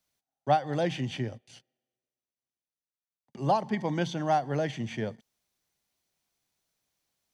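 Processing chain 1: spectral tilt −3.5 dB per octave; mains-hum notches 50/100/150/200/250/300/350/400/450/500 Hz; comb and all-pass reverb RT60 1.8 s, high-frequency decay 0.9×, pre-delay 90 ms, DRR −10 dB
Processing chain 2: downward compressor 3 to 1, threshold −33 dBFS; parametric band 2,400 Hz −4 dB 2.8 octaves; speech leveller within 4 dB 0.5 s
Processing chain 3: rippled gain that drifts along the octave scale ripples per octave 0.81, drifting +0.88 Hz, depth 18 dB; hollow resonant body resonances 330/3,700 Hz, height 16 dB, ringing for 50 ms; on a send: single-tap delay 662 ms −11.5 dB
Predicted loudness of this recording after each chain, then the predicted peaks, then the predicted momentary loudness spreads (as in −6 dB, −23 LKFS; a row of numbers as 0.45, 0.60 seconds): −16.5, −38.0, −23.0 LKFS; −1.5, −23.5, −5.0 dBFS; 16, 15, 17 LU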